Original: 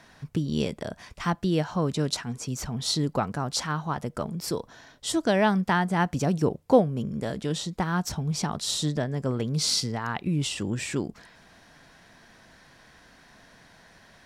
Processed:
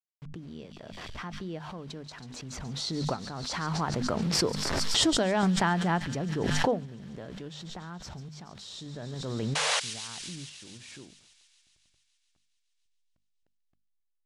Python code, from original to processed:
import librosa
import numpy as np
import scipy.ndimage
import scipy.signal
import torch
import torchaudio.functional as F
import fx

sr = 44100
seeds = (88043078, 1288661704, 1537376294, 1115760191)

p1 = fx.delta_hold(x, sr, step_db=-40.5)
p2 = fx.doppler_pass(p1, sr, speed_mps=7, closest_m=2.3, pass_at_s=4.68)
p3 = fx.spec_paint(p2, sr, seeds[0], shape='noise', start_s=9.55, length_s=0.25, low_hz=440.0, high_hz=11000.0, level_db=-30.0)
p4 = fx.high_shelf(p3, sr, hz=8600.0, db=-8.0)
p5 = fx.tremolo_random(p4, sr, seeds[1], hz=3.5, depth_pct=55)
p6 = fx.air_absorb(p5, sr, metres=65.0)
p7 = fx.hum_notches(p6, sr, base_hz=50, count=5)
p8 = p7 + fx.echo_wet_highpass(p7, sr, ms=140, feedback_pct=76, hz=3500.0, wet_db=-7.5, dry=0)
p9 = fx.pre_swell(p8, sr, db_per_s=20.0)
y = F.gain(torch.from_numpy(p9), 8.5).numpy()